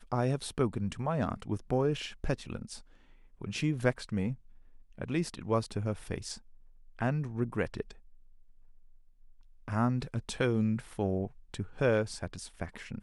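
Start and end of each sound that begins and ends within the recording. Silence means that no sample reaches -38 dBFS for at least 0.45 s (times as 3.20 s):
3.42–4.34 s
4.98–6.35 s
6.99–7.91 s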